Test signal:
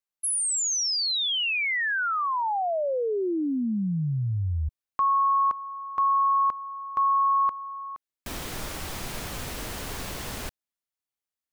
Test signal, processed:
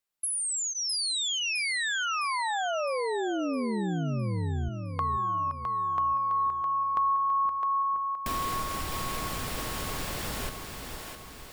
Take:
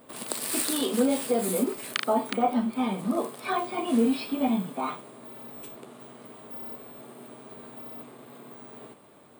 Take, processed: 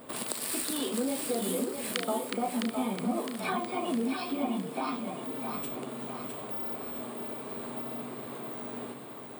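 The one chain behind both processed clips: compression 3:1, threshold -38 dBFS; band-stop 6.2 kHz, Q 18; two-band feedback delay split 360 Hz, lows 483 ms, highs 660 ms, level -6 dB; trim +5 dB

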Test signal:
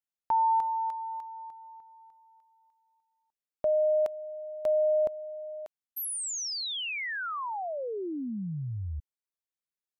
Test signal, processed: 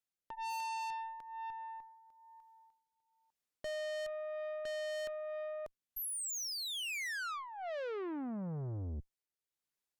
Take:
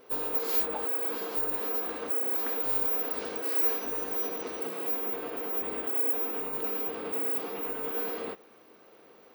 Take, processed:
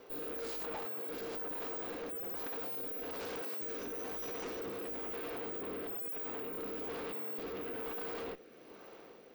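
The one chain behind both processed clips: rotary cabinet horn 1.1 Hz; valve stage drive 44 dB, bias 0.45; trim +5.5 dB

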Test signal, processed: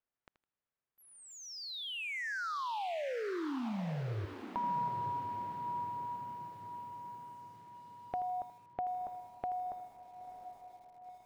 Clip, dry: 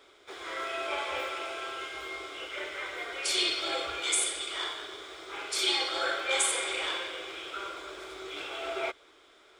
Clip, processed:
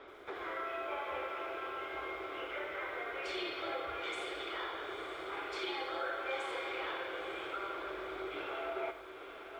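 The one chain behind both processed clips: low-pass 1.8 kHz 12 dB/octave; compression 2.5:1, threshold -50 dBFS; on a send: echo that smears into a reverb 949 ms, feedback 50%, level -10 dB; on the sum: bit-crushed delay 80 ms, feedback 35%, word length 11-bit, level -13 dB; trim +7.5 dB

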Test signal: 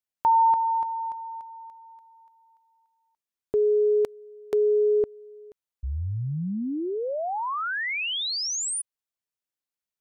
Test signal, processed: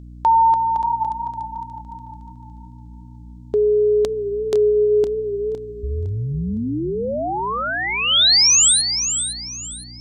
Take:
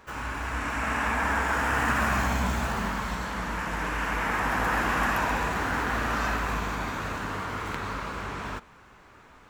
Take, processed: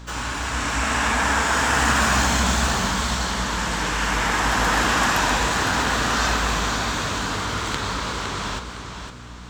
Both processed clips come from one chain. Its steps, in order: hum 60 Hz, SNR 16 dB; high-order bell 5.2 kHz +10.5 dB; modulated delay 510 ms, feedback 32%, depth 70 cents, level -8 dB; trim +5 dB

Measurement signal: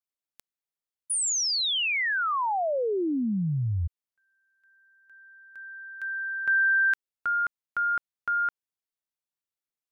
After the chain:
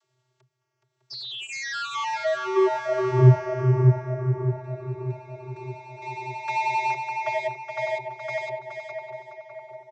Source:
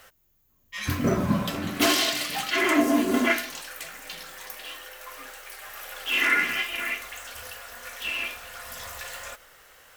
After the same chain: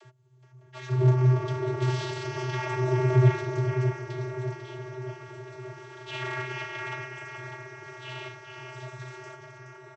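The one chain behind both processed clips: cycle switcher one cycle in 2, inverted; bass shelf 430 Hz +4 dB; band-stop 2.6 kHz, Q 10; peak limiter -16.5 dBFS; upward compressor, threshold -44 dBFS; wow and flutter 10 Hz 78 cents; tape echo 606 ms, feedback 71%, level -4 dB, low-pass 1.3 kHz; vocoder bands 32, square 127 Hz; feedback delay 421 ms, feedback 31%, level -7 dB; trim +2.5 dB

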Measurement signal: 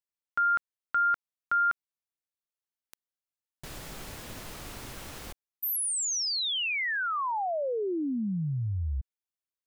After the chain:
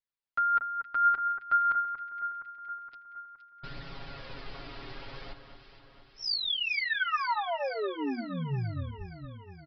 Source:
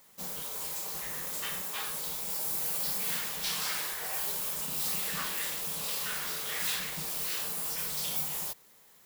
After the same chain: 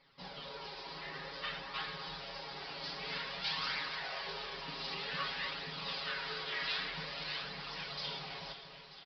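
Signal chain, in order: hum notches 50/100/150/200/250 Hz; comb 7.3 ms, depth 100%; flange 0.53 Hz, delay 0.4 ms, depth 2.8 ms, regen +54%; on a send: echo whose repeats swap between lows and highs 234 ms, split 1.9 kHz, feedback 75%, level -8 dB; on the sum: resampled via 11.025 kHz

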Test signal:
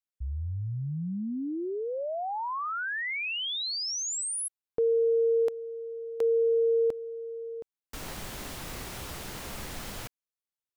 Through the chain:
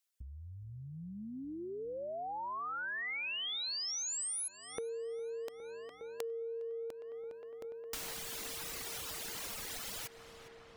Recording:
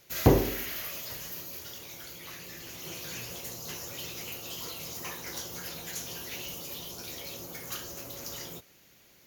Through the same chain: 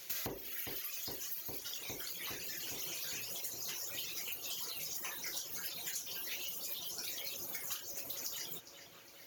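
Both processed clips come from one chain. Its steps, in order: reverb removal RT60 2 s; in parallel at -9.5 dB: saturation -13 dBFS; on the sum: treble shelf 2.1 kHz +9 dB; on a send: filtered feedback delay 409 ms, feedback 80%, low-pass 3.4 kHz, level -17 dB; on the sum: compression 6:1, threshold -39 dBFS; bass shelf 210 Hz -8.5 dB

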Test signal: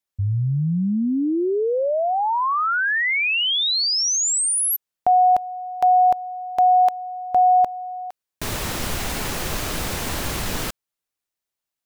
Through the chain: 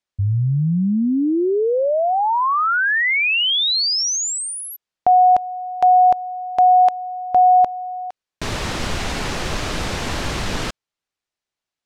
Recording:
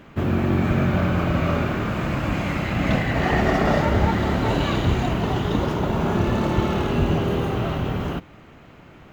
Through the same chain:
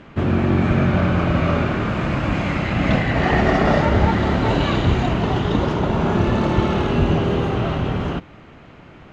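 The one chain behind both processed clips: low-pass 6 kHz 12 dB/octave; trim +3 dB

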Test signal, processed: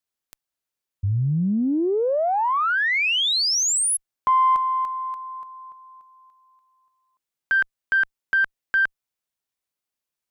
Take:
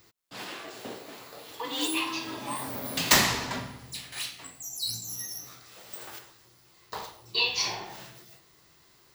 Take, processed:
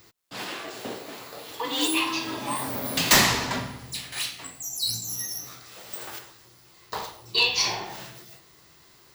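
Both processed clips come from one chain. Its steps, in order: single-diode clipper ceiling -9.5 dBFS; overload inside the chain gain 15.5 dB; trim +5 dB

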